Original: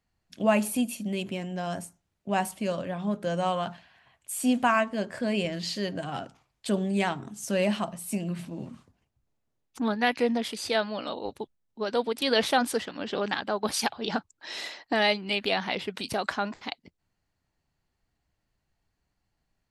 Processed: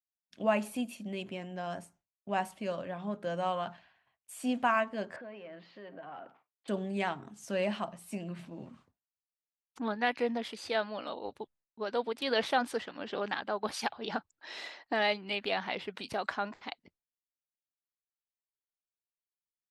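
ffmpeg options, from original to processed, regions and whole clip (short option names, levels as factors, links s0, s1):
-filter_complex "[0:a]asettb=1/sr,asplit=3[s0][s1][s2];[s0]atrim=end=5.164[s3];[s1]atrim=start=5.16:end=6.68,asetpts=PTS-STARTPTS,afade=t=in:d=0.004:c=qsin,afade=t=out:st=1.516:d=0.004:c=qsin,acompressor=threshold=0.01:ratio=3:attack=3.2:release=140:knee=1:detection=peak,asplit=2[s4][s5];[s5]highpass=f=720:p=1,volume=4.47,asoftclip=type=tanh:threshold=0.0355[s6];[s4][s6]amix=inputs=2:normalize=0,lowpass=f=1200:p=1,volume=0.501,highpass=160,lowpass=3200[s7];[s2]atrim=start=6.676[s8];[s3][s7]acrossfade=d=0.004:c1=hsin:c2=qsin[s9];[s9][s8]acrossfade=d=0.004:c1=qsin:c2=hsin,agate=range=0.0224:threshold=0.00224:ratio=3:detection=peak,lowpass=f=2400:p=1,lowshelf=f=350:g=-8,volume=0.75"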